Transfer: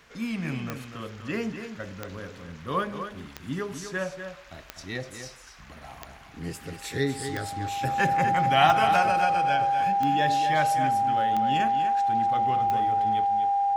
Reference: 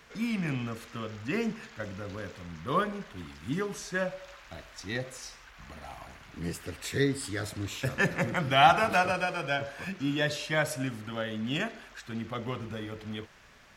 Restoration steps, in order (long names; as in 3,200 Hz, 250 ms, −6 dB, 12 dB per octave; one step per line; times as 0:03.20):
click removal
notch filter 800 Hz, Q 30
echo removal 247 ms −8.5 dB